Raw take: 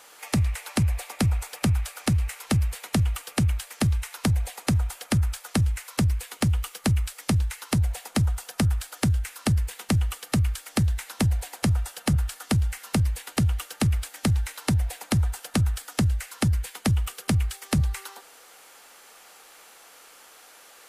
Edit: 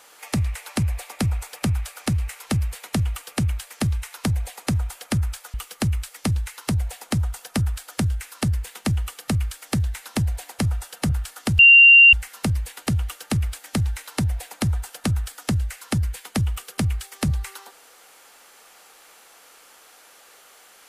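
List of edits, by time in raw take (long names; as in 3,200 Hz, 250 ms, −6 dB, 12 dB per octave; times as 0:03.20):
0:05.54–0:06.58: remove
0:12.63: insert tone 2,770 Hz −6.5 dBFS 0.54 s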